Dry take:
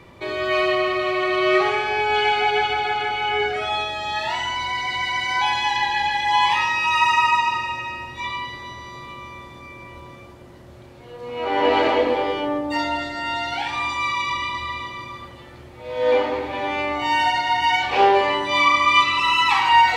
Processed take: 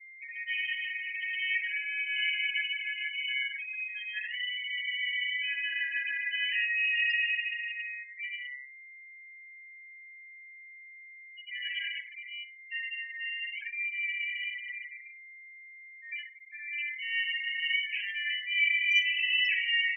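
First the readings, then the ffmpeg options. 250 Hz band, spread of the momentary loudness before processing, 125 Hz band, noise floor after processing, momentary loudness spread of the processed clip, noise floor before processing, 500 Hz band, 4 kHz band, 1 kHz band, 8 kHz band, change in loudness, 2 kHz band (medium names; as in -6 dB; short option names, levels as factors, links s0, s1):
under -40 dB, 18 LU, under -40 dB, -50 dBFS, 22 LU, -43 dBFS, under -40 dB, -8.0 dB, under -40 dB, under -25 dB, -10.0 dB, -6.0 dB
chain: -filter_complex "[0:a]aeval=exprs='val(0)+0.0112*sin(2*PI*2100*n/s)':c=same,afftfilt=real='re*gte(hypot(re,im),0.1)':imag='im*gte(hypot(re,im),0.1)':win_size=1024:overlap=0.75,asplit=2[s0][s1];[s1]adelay=61,lowpass=f=1000:p=1,volume=0.473,asplit=2[s2][s3];[s3]adelay=61,lowpass=f=1000:p=1,volume=0.33,asplit=2[s4][s5];[s5]adelay=61,lowpass=f=1000:p=1,volume=0.33,asplit=2[s6][s7];[s7]adelay=61,lowpass=f=1000:p=1,volume=0.33[s8];[s2][s4][s6][s8]amix=inputs=4:normalize=0[s9];[s0][s9]amix=inputs=2:normalize=0,afftfilt=real='re*eq(mod(floor(b*sr/1024/1600),2),1)':imag='im*eq(mod(floor(b*sr/1024/1600),2),1)':win_size=1024:overlap=0.75,volume=0.531"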